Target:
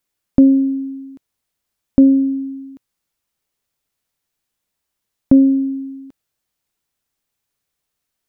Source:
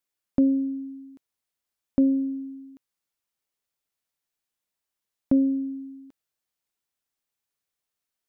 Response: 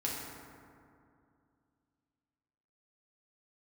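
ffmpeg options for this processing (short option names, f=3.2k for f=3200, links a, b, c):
-af "lowshelf=f=230:g=7,volume=7.5dB"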